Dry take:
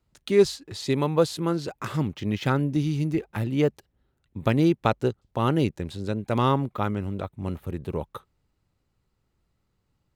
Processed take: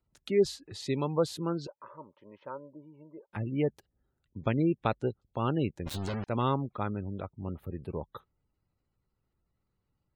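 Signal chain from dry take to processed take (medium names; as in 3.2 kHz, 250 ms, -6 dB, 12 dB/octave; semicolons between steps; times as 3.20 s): 1.67–3.33 s: two resonant band-passes 740 Hz, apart 0.72 oct; 5.86–6.27 s: companded quantiser 2-bit; spectral gate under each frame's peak -30 dB strong; trim -6.5 dB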